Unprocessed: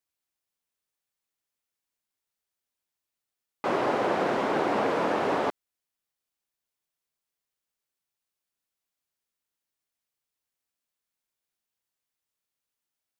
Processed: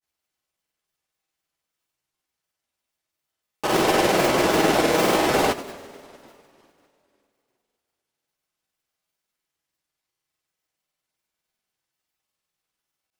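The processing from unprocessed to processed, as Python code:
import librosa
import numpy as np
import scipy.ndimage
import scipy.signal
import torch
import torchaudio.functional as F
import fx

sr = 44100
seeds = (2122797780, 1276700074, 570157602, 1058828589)

y = fx.halfwave_hold(x, sr)
y = fx.rev_double_slope(y, sr, seeds[0], early_s=0.43, late_s=2.7, knee_db=-20, drr_db=-2.0)
y = fx.granulator(y, sr, seeds[1], grain_ms=100.0, per_s=20.0, spray_ms=100.0, spread_st=0)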